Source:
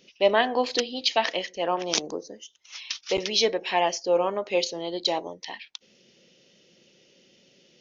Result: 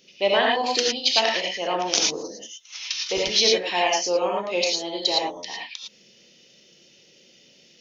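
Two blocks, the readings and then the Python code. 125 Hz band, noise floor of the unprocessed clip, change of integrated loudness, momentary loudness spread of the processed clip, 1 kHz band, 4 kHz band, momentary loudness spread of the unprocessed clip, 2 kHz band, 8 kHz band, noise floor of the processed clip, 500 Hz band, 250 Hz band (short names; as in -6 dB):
0.0 dB, -61 dBFS, +3.5 dB, 16 LU, +2.0 dB, +6.0 dB, 18 LU, +4.5 dB, n/a, -56 dBFS, +1.0 dB, +0.5 dB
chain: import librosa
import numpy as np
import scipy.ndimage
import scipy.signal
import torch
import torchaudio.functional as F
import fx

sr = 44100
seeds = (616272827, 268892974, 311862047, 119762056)

y = fx.high_shelf(x, sr, hz=2900.0, db=7.5)
y = fx.rev_gated(y, sr, seeds[0], gate_ms=130, shape='rising', drr_db=-2.0)
y = y * 10.0 ** (-2.5 / 20.0)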